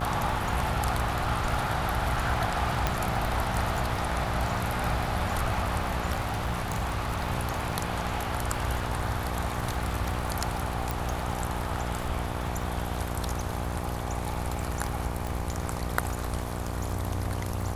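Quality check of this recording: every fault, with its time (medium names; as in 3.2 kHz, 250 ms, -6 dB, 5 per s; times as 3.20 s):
buzz 60 Hz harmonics 20 -34 dBFS
crackle 66 per s -35 dBFS
2.87 s: pop -10 dBFS
6.23–7.24 s: clipped -24.5 dBFS
10.91 s: pop
15.27 s: pop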